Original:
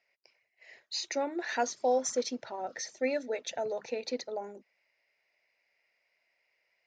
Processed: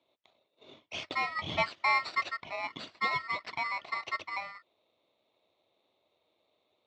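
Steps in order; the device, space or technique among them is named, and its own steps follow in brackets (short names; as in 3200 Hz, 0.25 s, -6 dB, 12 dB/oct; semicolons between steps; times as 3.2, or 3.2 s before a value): ring modulator pedal into a guitar cabinet (polarity switched at an audio rate 1600 Hz; speaker cabinet 90–4000 Hz, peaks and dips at 93 Hz +6 dB, 340 Hz +3 dB, 620 Hz +8 dB)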